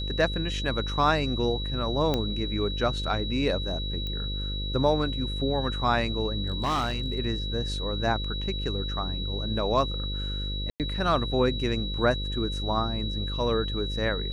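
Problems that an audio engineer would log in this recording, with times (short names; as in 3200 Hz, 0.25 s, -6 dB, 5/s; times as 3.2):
buzz 50 Hz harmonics 11 -32 dBFS
tone 3900 Hz -34 dBFS
2.14 pop -13 dBFS
4.07 pop -22 dBFS
6.48–7.19 clipped -22.5 dBFS
10.7–10.8 gap 98 ms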